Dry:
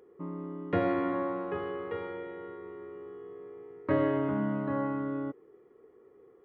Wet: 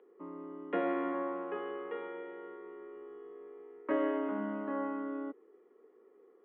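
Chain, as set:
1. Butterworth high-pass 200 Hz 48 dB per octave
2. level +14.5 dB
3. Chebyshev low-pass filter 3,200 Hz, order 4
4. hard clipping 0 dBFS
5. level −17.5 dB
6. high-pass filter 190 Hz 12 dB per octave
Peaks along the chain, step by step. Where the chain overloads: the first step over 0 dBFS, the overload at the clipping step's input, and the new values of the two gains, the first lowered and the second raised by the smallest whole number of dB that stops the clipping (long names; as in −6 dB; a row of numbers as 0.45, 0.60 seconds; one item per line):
−16.5, −2.0, −2.5, −2.5, −20.0, −20.5 dBFS
no step passes full scale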